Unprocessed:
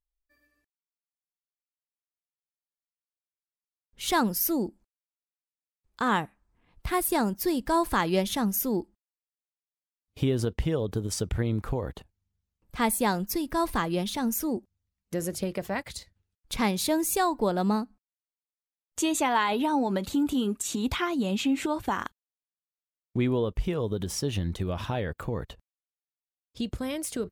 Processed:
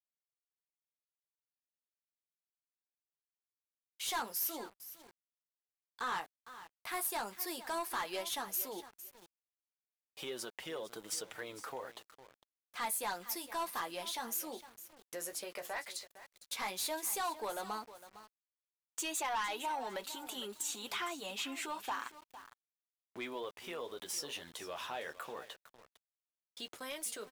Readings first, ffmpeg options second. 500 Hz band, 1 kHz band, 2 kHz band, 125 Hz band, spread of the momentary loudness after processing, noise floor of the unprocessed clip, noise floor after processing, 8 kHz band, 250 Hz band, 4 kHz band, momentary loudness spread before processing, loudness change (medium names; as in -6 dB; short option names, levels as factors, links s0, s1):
-13.5 dB, -10.0 dB, -8.0 dB, -31.5 dB, 16 LU, under -85 dBFS, under -85 dBFS, -5.5 dB, -22.5 dB, -6.0 dB, 10 LU, -11.0 dB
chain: -filter_complex "[0:a]agate=range=0.158:threshold=0.00251:ratio=16:detection=peak,flanger=delay=5.2:depth=8.1:regen=-34:speed=0.1:shape=sinusoidal,highpass=740,highshelf=f=9700:g=4,asplit=2[s0][s1];[s1]acompressor=threshold=0.00562:ratio=6,volume=0.794[s2];[s0][s2]amix=inputs=2:normalize=0,asoftclip=type=tanh:threshold=0.0376,aecho=1:1:457|914:0.188|0.0414,aeval=exprs='val(0)*gte(abs(val(0)),0.00224)':c=same,anlmdn=0.0000158,volume=0.75"